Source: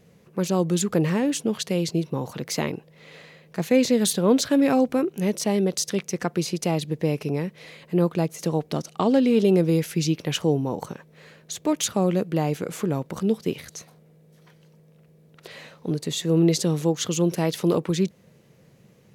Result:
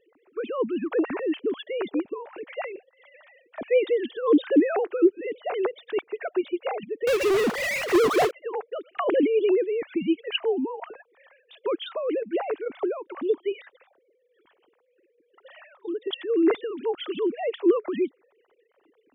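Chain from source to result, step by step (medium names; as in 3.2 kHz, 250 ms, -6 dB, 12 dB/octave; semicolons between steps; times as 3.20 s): formants replaced by sine waves; harmonic-percussive split harmonic -5 dB; 7.07–8.31 s: power-law waveshaper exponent 0.35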